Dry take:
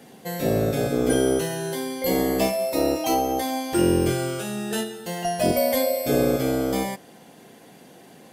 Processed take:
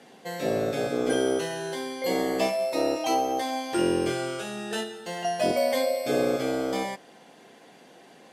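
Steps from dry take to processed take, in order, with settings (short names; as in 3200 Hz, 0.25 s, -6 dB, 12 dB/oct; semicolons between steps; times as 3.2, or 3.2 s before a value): HPF 450 Hz 6 dB/oct; air absorption 59 m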